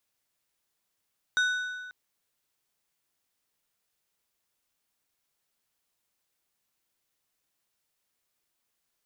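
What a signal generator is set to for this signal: metal hit plate, length 0.54 s, lowest mode 1490 Hz, decay 1.59 s, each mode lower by 8 dB, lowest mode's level -21 dB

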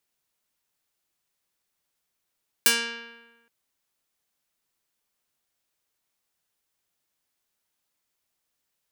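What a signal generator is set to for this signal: plucked string A#3, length 0.82 s, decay 1.21 s, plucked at 0.36, medium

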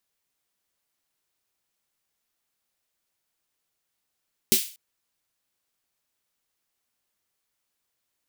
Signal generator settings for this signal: snare drum length 0.24 s, tones 230 Hz, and 380 Hz, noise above 2500 Hz, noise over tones 4.5 dB, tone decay 0.12 s, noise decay 0.38 s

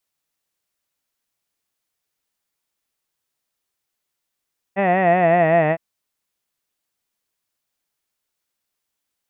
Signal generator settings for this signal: formant vowel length 1.01 s, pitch 191 Hz, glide -3.5 st, F1 680 Hz, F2 1900 Hz, F3 2600 Hz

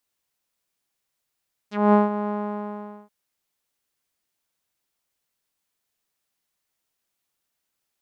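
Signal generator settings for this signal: synth note saw G#3 12 dB/oct, low-pass 960 Hz, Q 2.1, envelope 3 oct, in 0.07 s, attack 0.221 s, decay 0.16 s, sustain -12 dB, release 0.81 s, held 0.57 s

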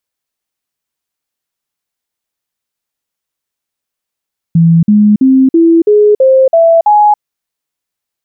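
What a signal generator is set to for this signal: stepped sine 166 Hz up, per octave 3, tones 8, 0.28 s, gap 0.05 s -3 dBFS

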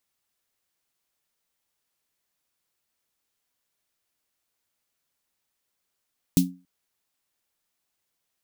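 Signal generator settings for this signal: snare drum length 0.28 s, tones 180 Hz, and 270 Hz, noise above 3100 Hz, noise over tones -7.5 dB, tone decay 0.32 s, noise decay 0.16 s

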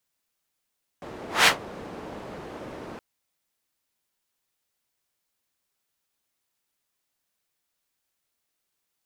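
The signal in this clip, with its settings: whoosh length 1.97 s, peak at 0.44, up 0.19 s, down 0.13 s, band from 460 Hz, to 2400 Hz, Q 0.76, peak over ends 23 dB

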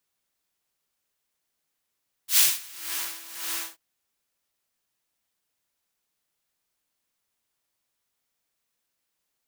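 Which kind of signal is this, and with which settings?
synth patch with tremolo E4, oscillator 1 triangle, detune 14 cents, sub -8.5 dB, noise -1.5 dB, filter highpass, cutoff 750 Hz, Q 0.79, filter envelope 2 oct, filter decay 0.79 s, attack 92 ms, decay 0.22 s, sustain -14 dB, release 0.14 s, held 1.35 s, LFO 1.8 Hz, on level 14 dB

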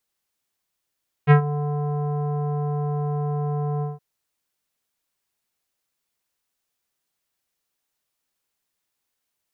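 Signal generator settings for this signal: synth note square D3 24 dB/oct, low-pass 950 Hz, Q 1.3, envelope 1.5 oct, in 0.18 s, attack 40 ms, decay 0.10 s, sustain -15 dB, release 0.17 s, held 2.55 s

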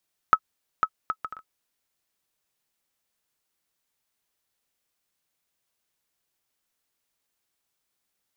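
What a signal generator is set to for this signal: bouncing ball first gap 0.50 s, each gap 0.54, 1290 Hz, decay 60 ms -5 dBFS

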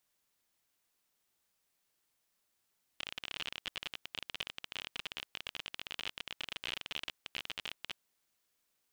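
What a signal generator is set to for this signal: random clicks 36/s -22.5 dBFS 4.98 s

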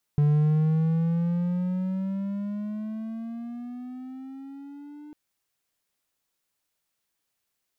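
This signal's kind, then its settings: gliding synth tone triangle, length 4.95 s, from 146 Hz, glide +12.5 st, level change -24 dB, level -15 dB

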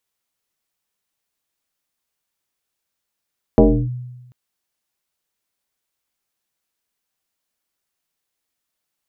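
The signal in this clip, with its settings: FM tone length 0.74 s, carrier 124 Hz, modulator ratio 1.37, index 3.2, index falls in 0.31 s linear, decay 1.12 s, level -5 dB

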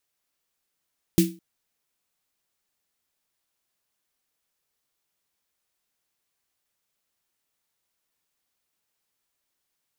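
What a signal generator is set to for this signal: snare drum length 0.21 s, tones 180 Hz, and 330 Hz, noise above 2200 Hz, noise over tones -9 dB, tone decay 0.31 s, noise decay 0.26 s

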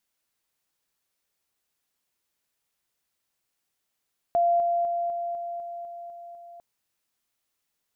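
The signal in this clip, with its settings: level ladder 690 Hz -18.5 dBFS, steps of -3 dB, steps 9, 0.25 s 0.00 s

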